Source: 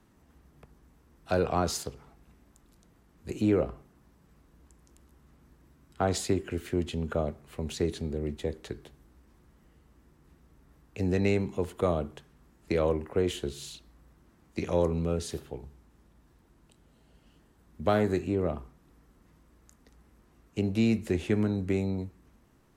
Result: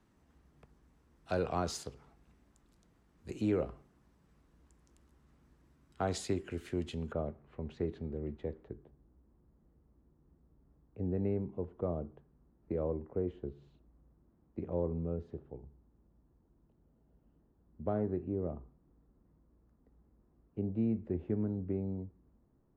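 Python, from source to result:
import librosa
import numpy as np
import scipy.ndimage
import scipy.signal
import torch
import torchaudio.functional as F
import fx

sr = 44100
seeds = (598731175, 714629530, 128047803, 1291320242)

y = fx.bessel_lowpass(x, sr, hz=fx.steps((0.0, 8800.0), (7.11, 1400.0), (8.63, 610.0)), order=2)
y = F.gain(torch.from_numpy(y), -6.5).numpy()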